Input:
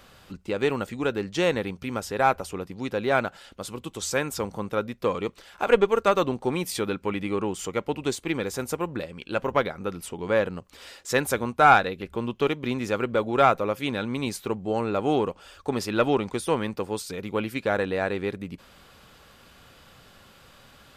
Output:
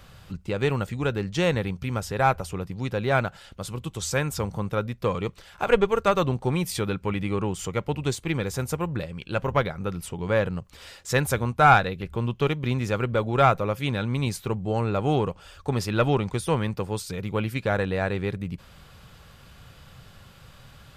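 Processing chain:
low shelf with overshoot 190 Hz +8 dB, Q 1.5

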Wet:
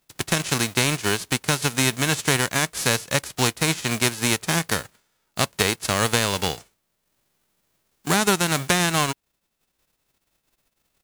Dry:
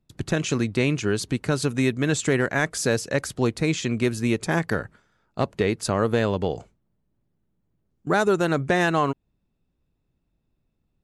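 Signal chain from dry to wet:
spectral envelope flattened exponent 0.3
transient designer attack +2 dB, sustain −4 dB

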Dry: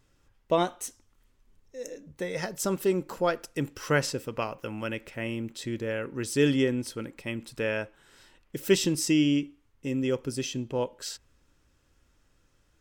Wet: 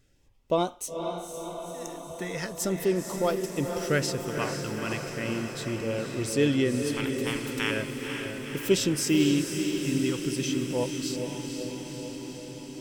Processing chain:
0:06.92–0:07.70: ceiling on every frequency bin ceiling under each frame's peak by 28 dB
in parallel at −6 dB: soft clipping −22 dBFS, distortion −12 dB
on the sum: auto-filter notch sine 0.38 Hz 500–1,800 Hz
feedback delay with all-pass diffusion 493 ms, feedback 72%, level −6 dB
level −2.5 dB

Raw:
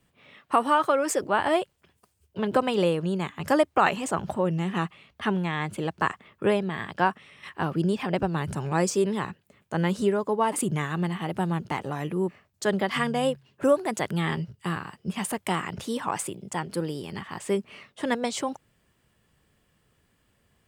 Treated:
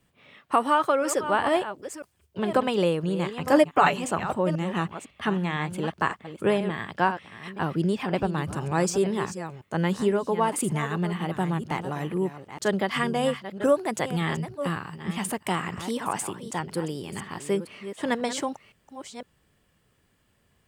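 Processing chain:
delay that plays each chunk backwards 506 ms, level −11 dB
0:03.52–0:03.99: comb filter 6.9 ms, depth 69%

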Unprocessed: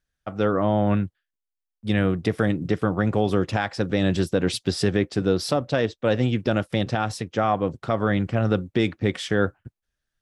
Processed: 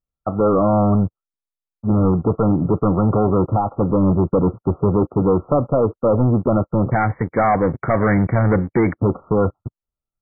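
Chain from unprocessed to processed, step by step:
de-essing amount 70%
leveller curve on the samples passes 3
linear-phase brick-wall low-pass 1,400 Hz, from 0:06.91 2,300 Hz, from 0:08.97 1,400 Hz

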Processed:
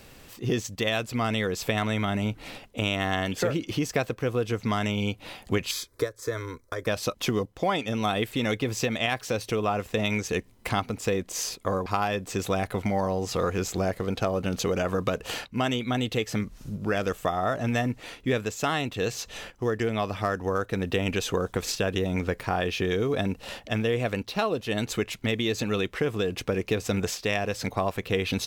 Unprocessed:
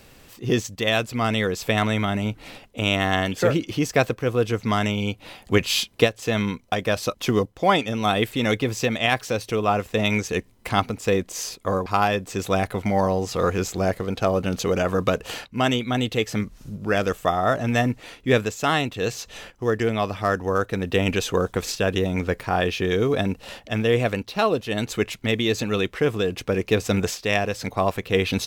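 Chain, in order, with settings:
downward compressor 3 to 1, threshold −24 dBFS, peak gain reduction 9.5 dB
0:05.71–0:06.87: phaser with its sweep stopped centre 760 Hz, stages 6

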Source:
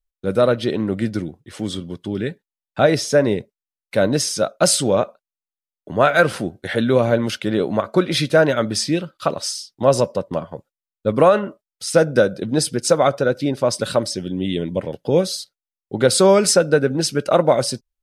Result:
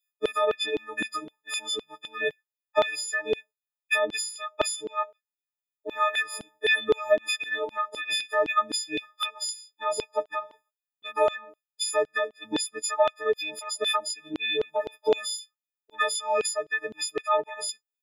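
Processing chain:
every partial snapped to a pitch grid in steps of 6 semitones
reverb reduction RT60 1.4 s
downward compressor 16 to 1, threshold −22 dBFS, peak gain reduction 22.5 dB
high shelf with overshoot 3,700 Hz −6 dB, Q 1.5
auto-filter high-pass saw down 3.9 Hz 370–3,500 Hz

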